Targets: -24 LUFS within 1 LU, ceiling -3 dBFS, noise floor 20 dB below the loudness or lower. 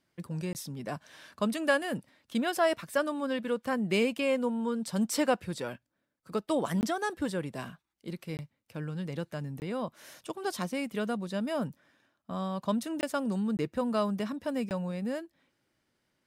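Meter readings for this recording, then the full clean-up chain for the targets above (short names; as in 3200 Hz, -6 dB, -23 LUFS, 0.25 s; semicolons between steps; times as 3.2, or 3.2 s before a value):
dropouts 7; longest dropout 19 ms; loudness -32.5 LUFS; peak -14.0 dBFS; loudness target -24.0 LUFS
-> interpolate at 0.53/6.81/8.37/9.6/13.01/13.57/14.69, 19 ms; gain +8.5 dB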